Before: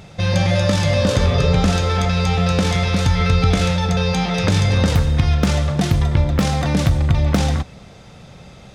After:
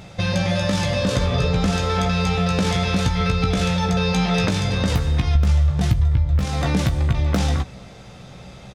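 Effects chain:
0:05.35–0:06.44: low shelf with overshoot 150 Hz +11 dB, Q 1.5
downward compressor 6 to 1, threshold −16 dBFS, peak gain reduction 16.5 dB
double-tracking delay 16 ms −7 dB

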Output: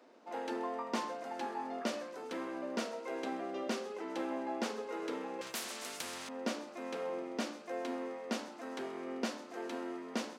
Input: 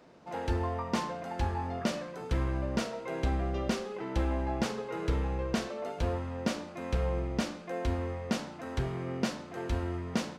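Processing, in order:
elliptic high-pass filter 240 Hz, stop band 80 dB
delay with a high-pass on its return 130 ms, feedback 72%, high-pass 5,300 Hz, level −15 dB
0:05.41–0:06.29: every bin compressed towards the loudest bin 4 to 1
level −3 dB

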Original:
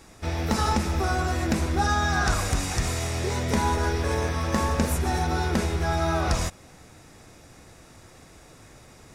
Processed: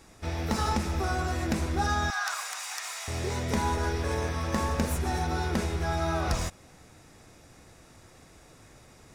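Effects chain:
stylus tracing distortion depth 0.027 ms
0:02.10–0:03.08: high-pass filter 860 Hz 24 dB per octave
level −4 dB

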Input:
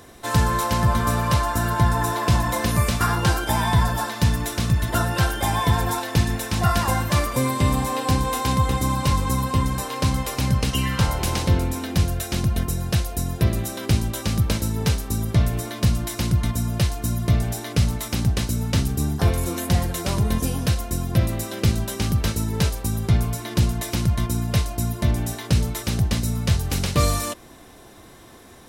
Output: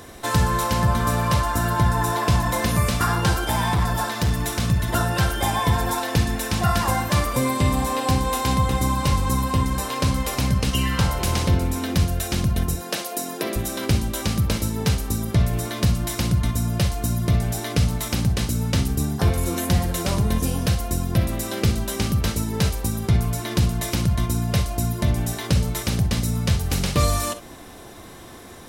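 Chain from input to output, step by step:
0:12.75–0:13.56: high-pass filter 270 Hz 24 dB per octave
in parallel at +2.5 dB: downward compressor, threshold −29 dBFS, peak gain reduction 15 dB
0:03.48–0:04.66: on the sum: hard clipping −13.5 dBFS, distortion −26 dB
reverb whose tail is shaped and stops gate 80 ms rising, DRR 10 dB
level −3 dB

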